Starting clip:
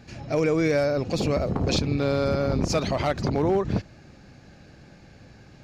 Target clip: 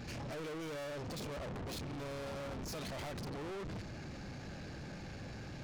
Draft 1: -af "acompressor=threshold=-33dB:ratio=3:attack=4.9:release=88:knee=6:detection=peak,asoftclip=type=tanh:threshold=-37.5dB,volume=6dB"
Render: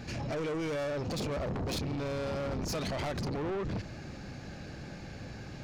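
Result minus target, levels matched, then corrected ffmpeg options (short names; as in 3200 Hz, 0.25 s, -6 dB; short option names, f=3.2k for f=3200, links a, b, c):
soft clip: distortion -5 dB
-af "acompressor=threshold=-33dB:ratio=3:attack=4.9:release=88:knee=6:detection=peak,asoftclip=type=tanh:threshold=-47.5dB,volume=6dB"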